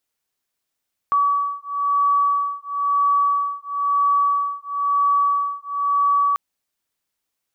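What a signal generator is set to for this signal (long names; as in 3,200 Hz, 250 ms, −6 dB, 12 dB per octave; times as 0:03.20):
two tones that beat 1,140 Hz, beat 1 Hz, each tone −20 dBFS 5.24 s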